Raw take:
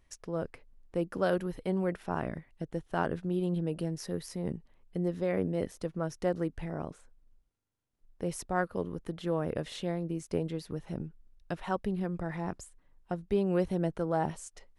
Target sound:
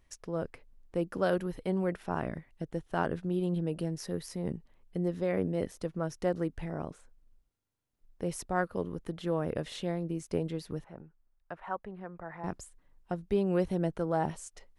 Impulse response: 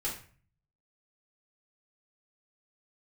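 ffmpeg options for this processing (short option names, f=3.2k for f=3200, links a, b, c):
-filter_complex "[0:a]asettb=1/sr,asplit=3[a][b][c];[a]atrim=end=10.844[d];[b]atrim=start=10.84:end=12.44,asetpts=PTS-STARTPTS,afade=t=in:d=0.004:c=qsin,afade=t=out:st=1.596:d=0.004:c=qsin,acrossover=split=590 2000:gain=0.224 1 0.0794[e][f][g];[e][f][g]amix=inputs=3:normalize=0[h];[c]atrim=start=12.436[i];[d][h]acrossfade=d=0.004:c1=hsin:c2=qsin[j];[j][i]acrossfade=d=0.004:c1=qsin:c2=hsin"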